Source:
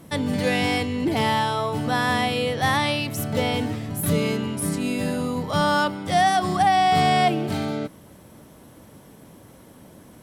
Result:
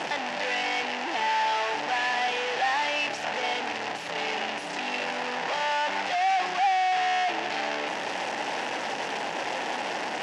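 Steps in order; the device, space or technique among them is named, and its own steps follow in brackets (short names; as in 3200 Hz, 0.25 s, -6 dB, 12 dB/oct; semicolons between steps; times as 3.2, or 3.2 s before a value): home computer beeper (infinite clipping; speaker cabinet 510–5500 Hz, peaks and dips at 810 Hz +9 dB, 1200 Hz -5 dB, 1800 Hz +6 dB, 2700 Hz +6 dB, 4000 Hz -4 dB); gain -4.5 dB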